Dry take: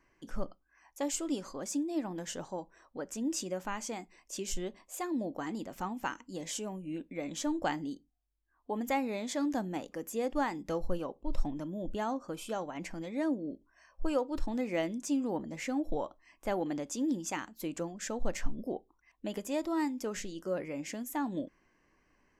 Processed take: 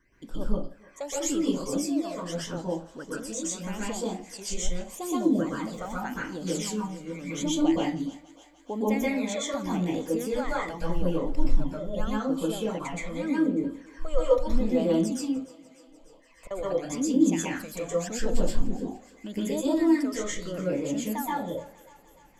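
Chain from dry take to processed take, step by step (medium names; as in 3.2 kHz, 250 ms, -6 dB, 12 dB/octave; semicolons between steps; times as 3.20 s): in parallel at -2 dB: peak limiter -27.5 dBFS, peak gain reduction 10.5 dB; 15.24–16.51 s: on the sum: inverted gate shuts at -29 dBFS, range -31 dB; phase shifter stages 12, 0.83 Hz, lowest notch 260–2100 Hz; thinning echo 297 ms, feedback 70%, high-pass 440 Hz, level -19.5 dB; reverberation RT60 0.35 s, pre-delay 117 ms, DRR -6.5 dB; trim -2 dB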